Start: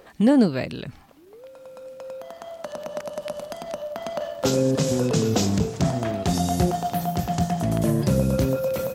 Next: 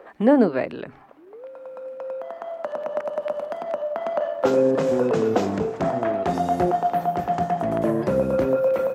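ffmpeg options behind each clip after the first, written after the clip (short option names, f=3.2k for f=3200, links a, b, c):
-filter_complex "[0:a]acrossover=split=280 2100:gain=0.141 1 0.0891[a][b][c];[a][b][c]amix=inputs=3:normalize=0,bandreject=f=136.3:t=h:w=4,bandreject=f=272.6:t=h:w=4,bandreject=f=408.9:t=h:w=4,volume=5.5dB"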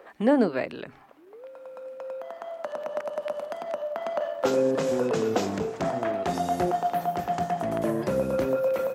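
-af "highshelf=f=2.5k:g=9.5,volume=-5dB"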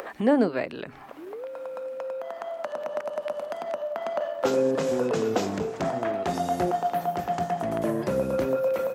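-af "acompressor=mode=upward:threshold=-28dB:ratio=2.5"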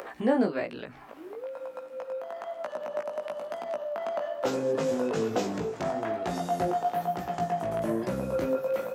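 -af "flanger=delay=16:depth=3.7:speed=1.1"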